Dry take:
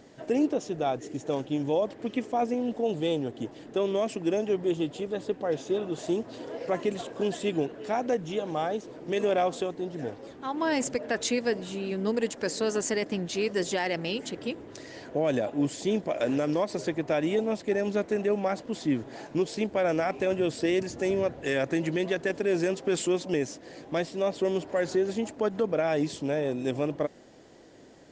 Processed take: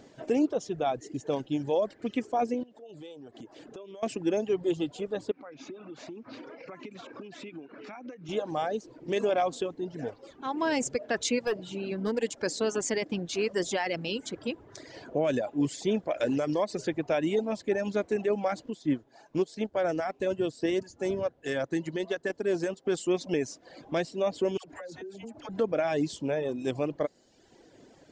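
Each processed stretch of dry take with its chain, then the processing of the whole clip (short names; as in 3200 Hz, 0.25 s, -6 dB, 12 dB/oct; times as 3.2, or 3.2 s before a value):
2.63–4.03 low shelf 120 Hz -9 dB + compressor, threshold -41 dBFS
5.31–8.29 compressor 12:1, threshold -37 dBFS + speaker cabinet 140–5700 Hz, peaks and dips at 270 Hz +4 dB, 460 Hz -5 dB, 680 Hz -5 dB, 1300 Hz +7 dB, 2300 Hz +9 dB, 3200 Hz -5 dB
11.47–12.18 LPF 6700 Hz + overloaded stage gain 22.5 dB
18.7–23.08 dynamic EQ 2400 Hz, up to -8 dB, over -55 dBFS, Q 6.5 + upward expander, over -42 dBFS
24.57–25.49 dispersion lows, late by 82 ms, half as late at 950 Hz + compressor 12:1, threshold -37 dBFS
whole clip: notch 1900 Hz, Q 25; reverb removal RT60 0.98 s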